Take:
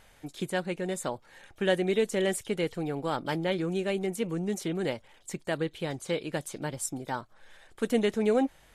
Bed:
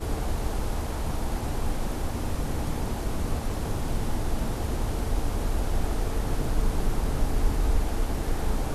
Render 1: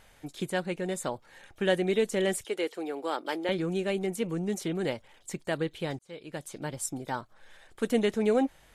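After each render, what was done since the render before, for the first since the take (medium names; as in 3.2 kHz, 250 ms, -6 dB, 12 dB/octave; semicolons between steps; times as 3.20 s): 2.44–3.49 s: Chebyshev high-pass 330 Hz, order 3; 5.99–7.05 s: fade in equal-power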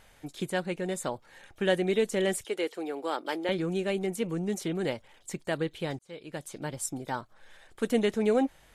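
no audible change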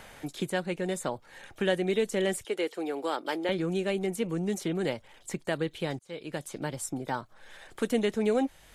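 three bands compressed up and down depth 40%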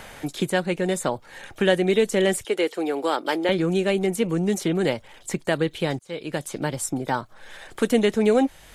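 trim +7.5 dB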